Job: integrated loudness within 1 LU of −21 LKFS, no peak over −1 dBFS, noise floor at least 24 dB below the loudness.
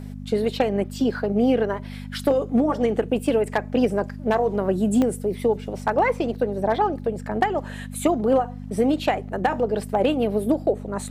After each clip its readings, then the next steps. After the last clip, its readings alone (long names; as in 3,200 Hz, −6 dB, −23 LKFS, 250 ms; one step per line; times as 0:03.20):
number of dropouts 1; longest dropout 2.1 ms; mains hum 50 Hz; hum harmonics up to 250 Hz; level of the hum −32 dBFS; integrated loudness −23.0 LKFS; sample peak −8.5 dBFS; target loudness −21.0 LKFS
→ repair the gap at 0:05.02, 2.1 ms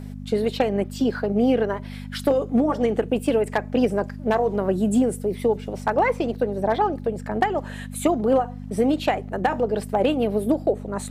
number of dropouts 0; mains hum 50 Hz; hum harmonics up to 250 Hz; level of the hum −32 dBFS
→ hum removal 50 Hz, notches 5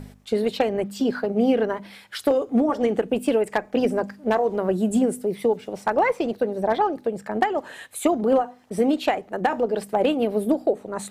mains hum none found; integrated loudness −23.5 LKFS; sample peak −8.5 dBFS; target loudness −21.0 LKFS
→ level +2.5 dB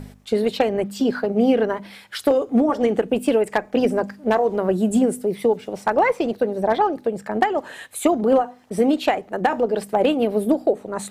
integrated loudness −21.0 LKFS; sample peak −6.0 dBFS; background noise floor −48 dBFS